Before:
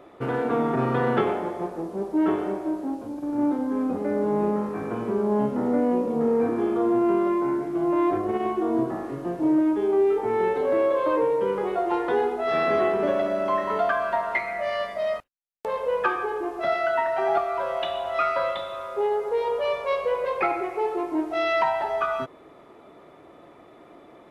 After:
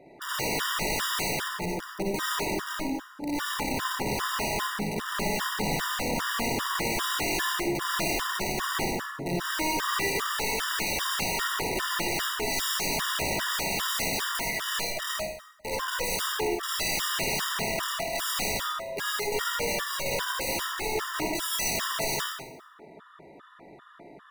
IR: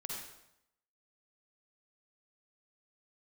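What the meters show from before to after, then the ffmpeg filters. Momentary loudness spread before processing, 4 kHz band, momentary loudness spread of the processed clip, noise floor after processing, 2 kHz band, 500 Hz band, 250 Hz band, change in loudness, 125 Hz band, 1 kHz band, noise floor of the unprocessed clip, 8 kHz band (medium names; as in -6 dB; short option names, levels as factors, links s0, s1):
7 LU, +13.0 dB, 5 LU, -51 dBFS, +3.5 dB, -11.0 dB, -10.0 dB, -3.5 dB, -1.5 dB, -4.5 dB, -50 dBFS, no reading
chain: -filter_complex "[0:a]equalizer=f=160:t=o:w=0.67:g=6,equalizer=f=1600:t=o:w=0.67:g=10,equalizer=f=4000:t=o:w=0.67:g=6,aeval=exprs='(mod(10.6*val(0)+1,2)-1)/10.6':c=same[s0];[1:a]atrim=start_sample=2205[s1];[s0][s1]afir=irnorm=-1:irlink=0,afftfilt=real='re*gt(sin(2*PI*2.5*pts/sr)*(1-2*mod(floor(b*sr/1024/960),2)),0)':imag='im*gt(sin(2*PI*2.5*pts/sr)*(1-2*mod(floor(b*sr/1024/960),2)),0)':win_size=1024:overlap=0.75"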